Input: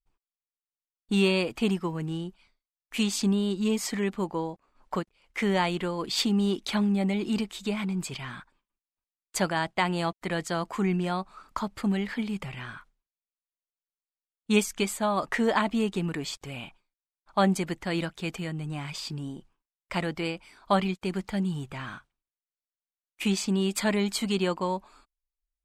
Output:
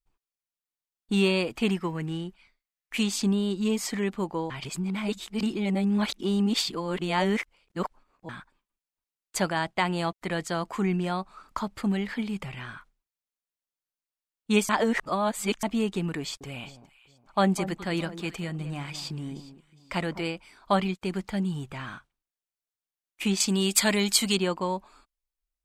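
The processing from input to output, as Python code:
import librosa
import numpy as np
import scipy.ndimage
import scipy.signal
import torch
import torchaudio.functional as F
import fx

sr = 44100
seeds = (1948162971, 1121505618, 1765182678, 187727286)

y = fx.peak_eq(x, sr, hz=2000.0, db=7.0, octaves=0.77, at=(1.62, 2.97))
y = fx.echo_alternate(y, sr, ms=206, hz=1200.0, feedback_pct=52, wet_db=-12, at=(16.2, 20.21))
y = fx.high_shelf(y, sr, hz=2500.0, db=11.5, at=(23.4, 24.37))
y = fx.edit(y, sr, fx.reverse_span(start_s=4.5, length_s=3.79),
    fx.reverse_span(start_s=14.69, length_s=0.94), tone=tone)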